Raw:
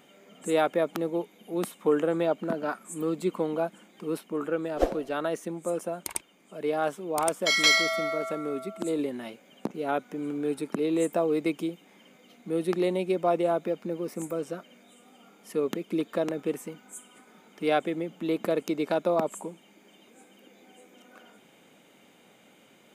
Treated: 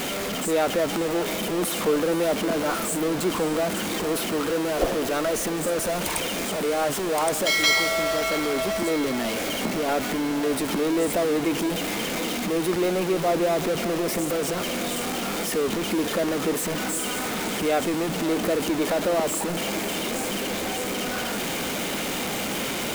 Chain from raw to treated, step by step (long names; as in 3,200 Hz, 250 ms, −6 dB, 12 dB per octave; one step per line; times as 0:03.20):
converter with a step at zero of −21 dBFS
feedback delay with all-pass diffusion 561 ms, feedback 66%, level −12 dB
level −2 dB